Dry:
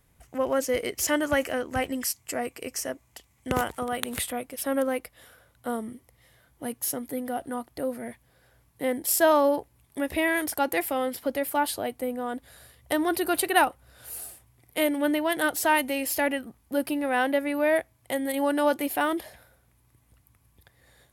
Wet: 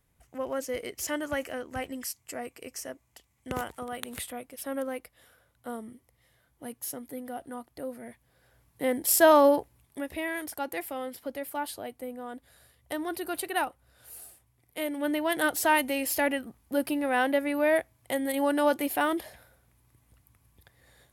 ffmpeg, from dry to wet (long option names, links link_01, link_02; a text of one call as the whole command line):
ffmpeg -i in.wav -af "volume=9.5dB,afade=type=in:start_time=8.07:duration=1.39:silence=0.334965,afade=type=out:start_time=9.46:duration=0.63:silence=0.298538,afade=type=in:start_time=14.85:duration=0.52:silence=0.446684" out.wav